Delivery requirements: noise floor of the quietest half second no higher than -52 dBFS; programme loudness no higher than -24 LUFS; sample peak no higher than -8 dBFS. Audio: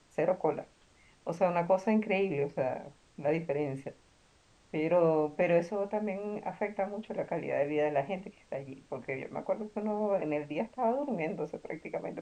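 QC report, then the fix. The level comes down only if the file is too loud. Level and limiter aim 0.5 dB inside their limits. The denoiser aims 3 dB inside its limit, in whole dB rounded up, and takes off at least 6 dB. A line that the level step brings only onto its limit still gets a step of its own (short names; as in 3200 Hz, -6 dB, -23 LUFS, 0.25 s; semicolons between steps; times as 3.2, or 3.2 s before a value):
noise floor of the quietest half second -64 dBFS: OK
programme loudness -32.5 LUFS: OK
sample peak -15.0 dBFS: OK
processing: none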